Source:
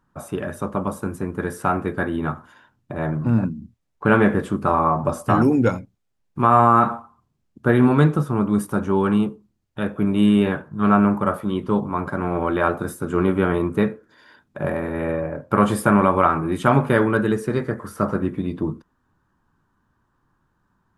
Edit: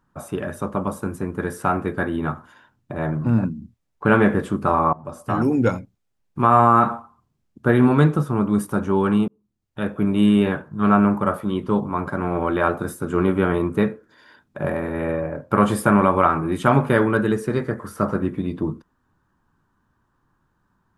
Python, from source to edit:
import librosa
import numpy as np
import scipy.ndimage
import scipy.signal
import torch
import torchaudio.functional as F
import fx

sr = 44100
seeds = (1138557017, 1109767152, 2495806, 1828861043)

y = fx.edit(x, sr, fx.fade_in_from(start_s=4.93, length_s=0.77, floor_db=-22.0),
    fx.fade_in_span(start_s=9.28, length_s=0.59), tone=tone)